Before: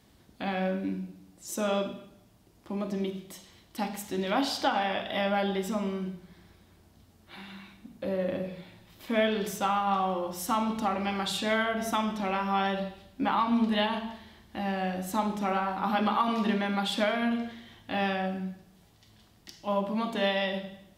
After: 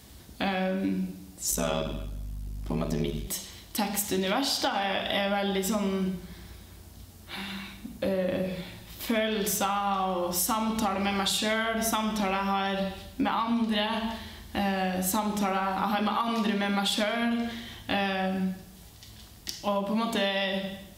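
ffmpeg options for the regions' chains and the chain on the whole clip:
ffmpeg -i in.wav -filter_complex "[0:a]asettb=1/sr,asplit=3[link_01][link_02][link_03];[link_01]atrim=end=1.514[link_04];[link_02]atrim=start=1.51:end=3.27,asetpts=PTS-STARTPTS,afade=type=in:duration=0.004:curve=qsin,afade=type=out:start_time=1.756:duration=0.004:curve=qsin,aeval=exprs='val(0)*sin(2*PI*37*n/s)':channel_layout=same,aeval=exprs='val(0)+0.00447*(sin(2*PI*50*n/s)+sin(2*PI*2*50*n/s)/2+sin(2*PI*3*50*n/s)/3+sin(2*PI*4*50*n/s)/4+sin(2*PI*5*50*n/s)/5)':channel_layout=same[link_05];[link_03]atrim=start=3.266[link_06];[link_04][link_05]acrossfade=duration=0.004:curve1=hsin:curve2=qsin[link_07];[link_07][link_06]acrossfade=duration=0.004:curve1=qsin:curve2=hsin,highshelf=frequency=4000:gain=10,acompressor=threshold=-31dB:ratio=6,equalizer=frequency=61:width=1.4:gain=9.5,volume=6.5dB" out.wav

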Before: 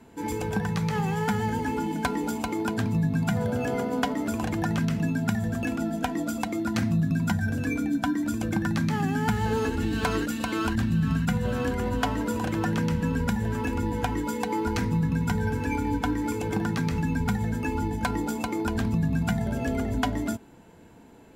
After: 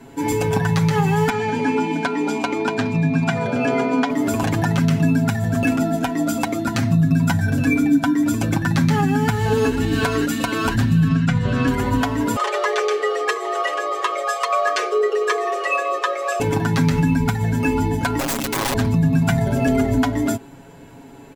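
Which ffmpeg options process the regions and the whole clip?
ffmpeg -i in.wav -filter_complex "[0:a]asettb=1/sr,asplit=3[link_01][link_02][link_03];[link_01]atrim=end=1.294[link_04];[link_02]atrim=start=1.29:end=4.1,asetpts=PTS-STARTPTS,afade=type=in:duration=0.004:curve=qsin,afade=type=out:start_time=2.806:duration=0.004:curve=qsin,highpass=200,lowpass=5600,aeval=exprs='val(0)+0.0316*sin(2*PI*2400*n/s)':channel_layout=same[link_05];[link_03]atrim=start=4.096[link_06];[link_04][link_05]acrossfade=duration=0.004:curve1=hsin:curve2=qsin[link_07];[link_07][link_06]acrossfade=duration=0.004:curve1=qsin:curve2=hsin,asettb=1/sr,asplit=3[link_08][link_09][link_10];[link_08]atrim=end=11.084[link_11];[link_09]atrim=start=11.08:end=11.68,asetpts=PTS-STARTPTS,afade=type=in:duration=0.004:curve=qsin,afade=type=out:start_time=0.596:duration=0.004:curve=qsin,lowpass=5700,equalizer=frequency=890:width=4.2:gain=-6[link_12];[link_10]atrim=start=11.676[link_13];[link_11][link_12]acrossfade=duration=0.004:curve1=hsin:curve2=qsin[link_14];[link_14][link_13]acrossfade=duration=0.004:curve1=qsin:curve2=hsin,asettb=1/sr,asplit=3[link_15][link_16][link_17];[link_15]atrim=end=12.364[link_18];[link_16]atrim=start=12.36:end=16.4,asetpts=PTS-STARTPTS,afade=type=in:duration=0.004:curve=qsin,afade=type=out:start_time=4.036:duration=0.004:curve=qsin,afreqshift=260,highpass=720,lowpass=7200,aecho=1:1:4.7:0.64,atrim=end_sample=178164[link_19];[link_17]atrim=start=16.396[link_20];[link_18][link_19]acrossfade=duration=0.004:curve1=hsin:curve2=qsin[link_21];[link_21][link_20]acrossfade=duration=0.004:curve1=qsin:curve2=hsin,asettb=1/sr,asplit=3[link_22][link_23][link_24];[link_22]atrim=end=18.194[link_25];[link_23]atrim=start=18.19:end=18.74,asetpts=PTS-STARTPTS,afade=type=in:duration=0.004:curve=qsin,afade=type=out:start_time=0.546:duration=0.004:curve=qsin,equalizer=frequency=950:width=0.97:gain=-10.5,aeval=exprs='(mod(20*val(0)+1,2)-1)/20':channel_layout=same[link_26];[link_24]atrim=start=18.736[link_27];[link_25][link_26]acrossfade=duration=0.004:curve1=hsin:curve2=qsin[link_28];[link_28][link_27]acrossfade=duration=0.004:curve1=qsin:curve2=hsin,aecho=1:1:7.3:0.82,alimiter=limit=-15.5dB:level=0:latency=1:release=308,volume=7.5dB" out.wav

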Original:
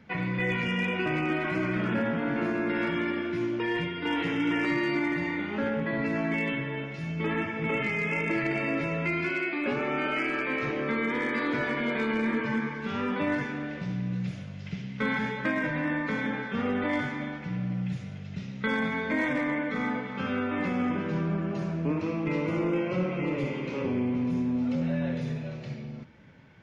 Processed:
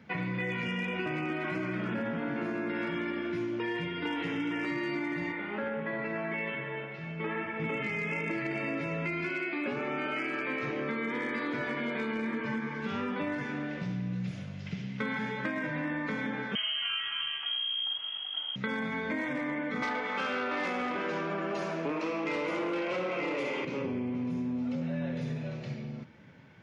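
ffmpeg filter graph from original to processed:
ffmpeg -i in.wav -filter_complex "[0:a]asettb=1/sr,asplit=3[link_01][link_02][link_03];[link_01]atrim=end=5.324[link_04];[link_02]atrim=start=5.32:end=7.6,asetpts=PTS-STARTPTS,afade=type=in:duration=0.004:curve=qsin,afade=type=out:start_time=2.276:duration=0.004:curve=qsin,lowpass=2700,lowshelf=frequency=180:gain=-12,bandreject=frequency=280:width=7.4[link_05];[link_03]atrim=start=7.596[link_06];[link_04][link_05]acrossfade=duration=0.004:curve1=hsin:curve2=qsin[link_07];[link_07][link_06]acrossfade=duration=0.004:curve1=qsin:curve2=hsin,asettb=1/sr,asplit=3[link_08][link_09][link_10];[link_08]atrim=end=16.554[link_11];[link_09]atrim=start=16.55:end=18.56,asetpts=PTS-STARTPTS,afade=type=in:duration=0.004:curve=qsin,afade=type=out:start_time=2.006:duration=0.004:curve=qsin,equalizer=frequency=440:width_type=o:width=2.1:gain=5,lowpass=frequency=2900:width_type=q:width=0.5098,lowpass=frequency=2900:width_type=q:width=0.6013,lowpass=frequency=2900:width_type=q:width=0.9,lowpass=frequency=2900:width_type=q:width=2.563,afreqshift=-3400[link_12];[link_10]atrim=start=18.556[link_13];[link_11][link_12]acrossfade=duration=0.004:curve1=hsin:curve2=qsin[link_14];[link_14][link_13]acrossfade=duration=0.004:curve1=qsin:curve2=hsin,asettb=1/sr,asplit=3[link_15][link_16][link_17];[link_15]atrim=end=19.824[link_18];[link_16]atrim=start=19.82:end=23.65,asetpts=PTS-STARTPTS,afade=type=in:duration=0.004:curve=qsin,afade=type=out:start_time=3.826:duration=0.004:curve=qsin,highpass=470,aeval=exprs='0.0891*sin(PI/2*2*val(0)/0.0891)':channel_layout=same[link_19];[link_17]atrim=start=23.646[link_20];[link_18][link_19]acrossfade=duration=0.004:curve1=hsin:curve2=qsin[link_21];[link_21][link_20]acrossfade=duration=0.004:curve1=qsin:curve2=hsin,highpass=87,acompressor=threshold=-30dB:ratio=6" out.wav

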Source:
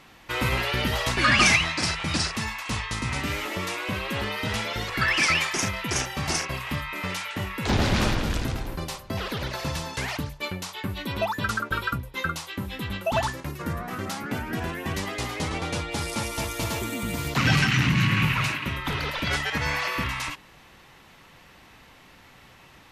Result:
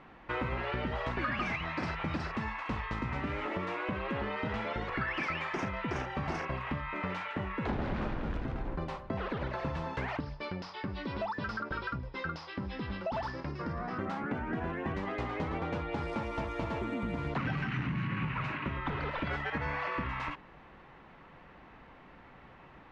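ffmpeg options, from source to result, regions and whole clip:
ffmpeg -i in.wav -filter_complex "[0:a]asettb=1/sr,asplit=3[link_01][link_02][link_03];[link_01]atrim=end=10.204[link_04];[link_02]atrim=start=10.2:end=13.98,asetpts=PTS-STARTPTS,afade=type=in:duration=0.004:curve=qsin,afade=type=out:start_time=3.776:duration=0.004:curve=qsin,lowpass=frequency=5100:width_type=q:width=12,asoftclip=type=hard:threshold=-21dB,acompressor=threshold=-32dB:ratio=2:attack=3.2:release=140:knee=1:detection=peak[link_05];[link_03]atrim=start=13.976[link_06];[link_04][link_05]acrossfade=duration=0.004:curve1=hsin:curve2=qsin[link_07];[link_07][link_06]acrossfade=duration=0.004:curve1=qsin:curve2=hsin,lowpass=1600,equalizer=frequency=100:width_type=o:width=0.58:gain=-6,acompressor=threshold=-31dB:ratio=6" out.wav

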